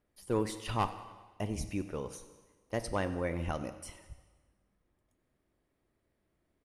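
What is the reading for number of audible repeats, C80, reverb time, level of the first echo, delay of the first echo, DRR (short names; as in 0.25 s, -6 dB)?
3, 12.5 dB, 1.4 s, -18.0 dB, 94 ms, 10.0 dB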